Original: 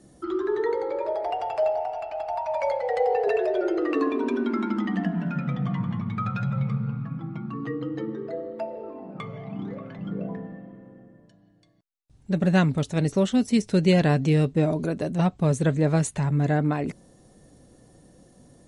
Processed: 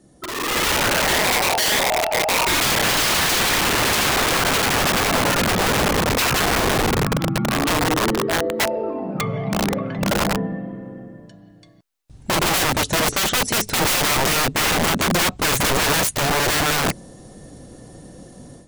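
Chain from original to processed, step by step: integer overflow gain 26.5 dB; level rider gain up to 12.5 dB

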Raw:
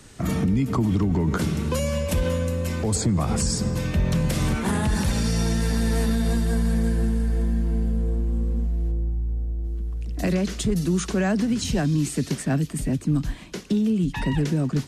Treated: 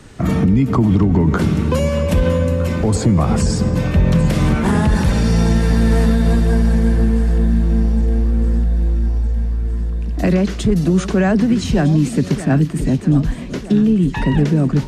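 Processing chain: treble shelf 4.1 kHz -11.5 dB; echo whose repeats swap between lows and highs 630 ms, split 1 kHz, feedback 76%, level -12.5 dB; trim +8 dB

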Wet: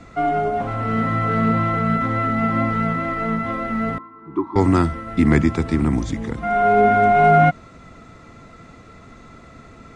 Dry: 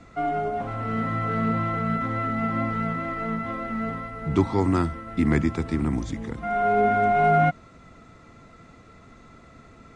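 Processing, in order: 3.98–4.56 s: two resonant band-passes 590 Hz, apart 1.6 oct; trim +6 dB

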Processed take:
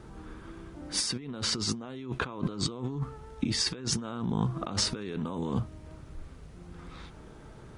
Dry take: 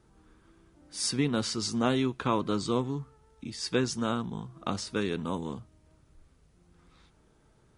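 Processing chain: treble shelf 5 kHz -9 dB; compressor with a negative ratio -41 dBFS, ratio -1; trim +7 dB

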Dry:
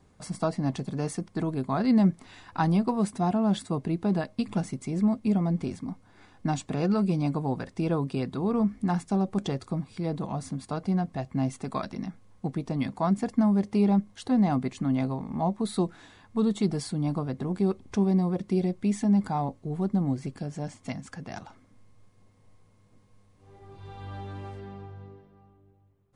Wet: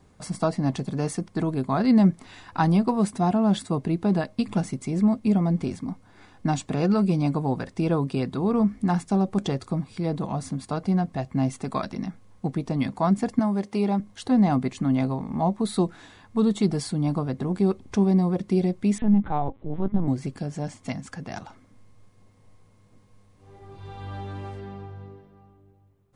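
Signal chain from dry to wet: 13.39–14.00 s: high-pass 340 Hz 6 dB/octave; 18.98–20.08 s: LPC vocoder at 8 kHz pitch kept; trim +3.5 dB

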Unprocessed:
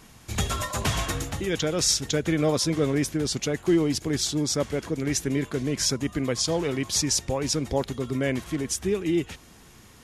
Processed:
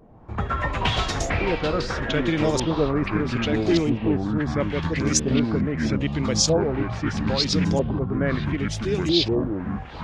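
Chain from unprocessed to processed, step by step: LFO low-pass saw up 0.77 Hz 560–7100 Hz; ever faster or slower copies 99 ms, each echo -6 st, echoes 3; wow and flutter 15 cents

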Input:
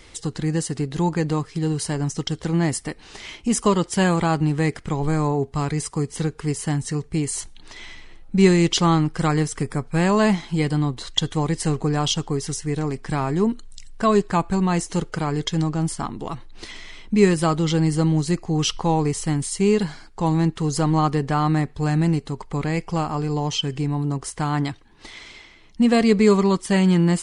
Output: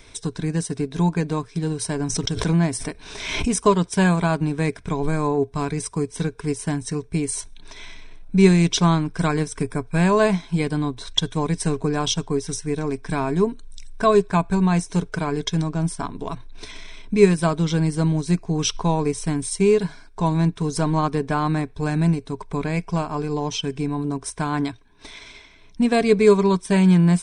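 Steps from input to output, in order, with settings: rippled EQ curve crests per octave 1.6, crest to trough 9 dB; transient shaper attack +1 dB, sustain -4 dB; 2.00–3.61 s: swell ahead of each attack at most 49 dB/s; trim -1 dB

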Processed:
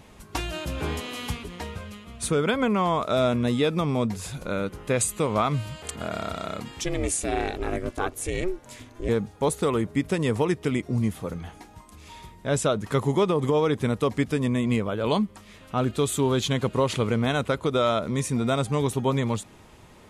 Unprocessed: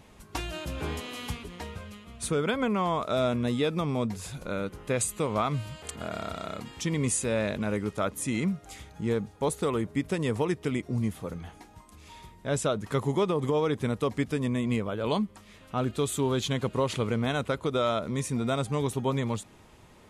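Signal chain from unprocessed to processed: 6.84–9.09 s: ring modulator 180 Hz; trim +4 dB

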